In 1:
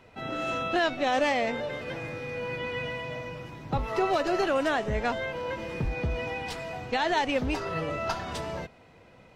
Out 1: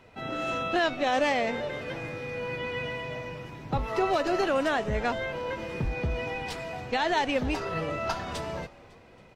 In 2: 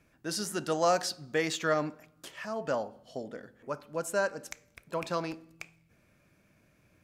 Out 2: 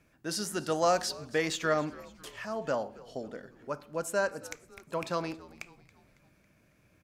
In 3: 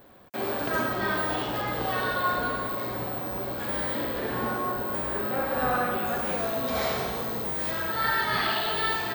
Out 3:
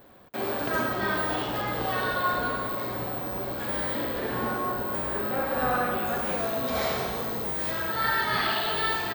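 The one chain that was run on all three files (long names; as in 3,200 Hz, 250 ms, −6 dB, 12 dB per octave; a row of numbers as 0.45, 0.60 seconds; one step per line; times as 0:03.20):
echo with shifted repeats 276 ms, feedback 51%, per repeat −94 Hz, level −20.5 dB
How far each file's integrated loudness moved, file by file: 0.0, 0.0, 0.0 LU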